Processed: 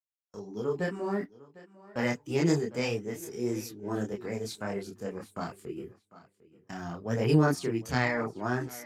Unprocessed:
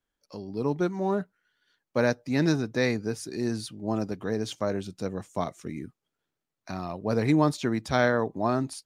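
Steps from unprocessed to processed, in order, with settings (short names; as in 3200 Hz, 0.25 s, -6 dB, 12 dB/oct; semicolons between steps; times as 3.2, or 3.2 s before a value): gate -44 dBFS, range -37 dB; bell 610 Hz -8 dB 0.61 oct; de-hum 48.81 Hz, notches 2; tape echo 0.75 s, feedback 21%, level -18 dB, low-pass 4900 Hz; formant shift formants +4 st; chorus voices 4, 1.5 Hz, delay 27 ms, depth 3 ms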